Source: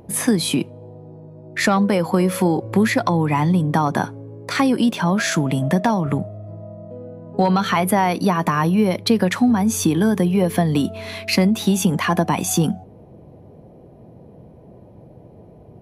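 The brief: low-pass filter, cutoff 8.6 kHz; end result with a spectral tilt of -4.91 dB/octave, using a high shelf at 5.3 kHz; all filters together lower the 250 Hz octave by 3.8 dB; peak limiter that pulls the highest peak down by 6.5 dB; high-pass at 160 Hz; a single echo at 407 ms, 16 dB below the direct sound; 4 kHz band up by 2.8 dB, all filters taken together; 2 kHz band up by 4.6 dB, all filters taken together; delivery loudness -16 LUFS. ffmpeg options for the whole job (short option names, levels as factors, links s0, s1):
-af "highpass=160,lowpass=8600,equalizer=f=250:t=o:g=-3.5,equalizer=f=2000:t=o:g=5.5,equalizer=f=4000:t=o:g=5.5,highshelf=f=5300:g=-9,alimiter=limit=0.299:level=0:latency=1,aecho=1:1:407:0.158,volume=1.88"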